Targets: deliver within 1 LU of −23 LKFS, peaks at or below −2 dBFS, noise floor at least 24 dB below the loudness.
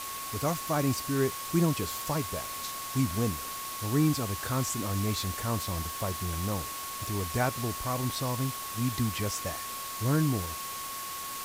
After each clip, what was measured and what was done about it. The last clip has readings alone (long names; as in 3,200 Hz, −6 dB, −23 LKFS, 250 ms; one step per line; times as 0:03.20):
interfering tone 1,100 Hz; level of the tone −39 dBFS; background noise floor −38 dBFS; target noise floor −55 dBFS; integrated loudness −31.0 LKFS; sample peak −14.0 dBFS; target loudness −23.0 LKFS
→ notch filter 1,100 Hz, Q 30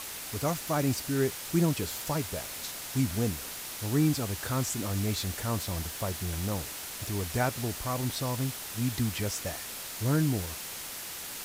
interfering tone none found; background noise floor −40 dBFS; target noise floor −55 dBFS
→ broadband denoise 15 dB, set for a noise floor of −40 dBFS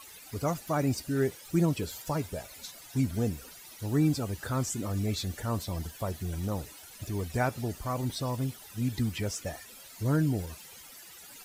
background noise floor −50 dBFS; target noise floor −56 dBFS
→ broadband denoise 6 dB, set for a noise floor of −50 dBFS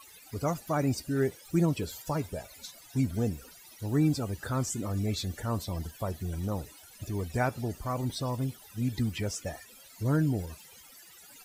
background noise floor −53 dBFS; target noise floor −56 dBFS
→ broadband denoise 6 dB, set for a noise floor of −53 dBFS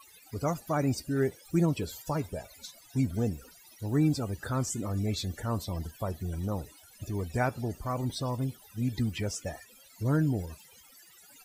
background noise floor −56 dBFS; integrated loudness −32.0 LKFS; sample peak −15.0 dBFS; target loudness −23.0 LKFS
→ level +9 dB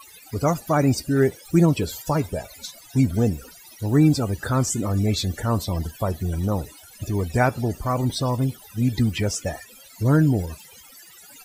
integrated loudness −23.0 LKFS; sample peak −6.0 dBFS; background noise floor −47 dBFS